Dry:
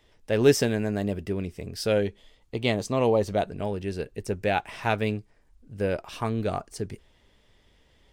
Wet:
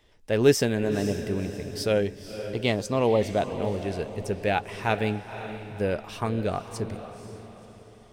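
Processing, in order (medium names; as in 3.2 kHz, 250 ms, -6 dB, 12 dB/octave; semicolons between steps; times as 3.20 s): echo that smears into a reverb 509 ms, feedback 43%, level -10.5 dB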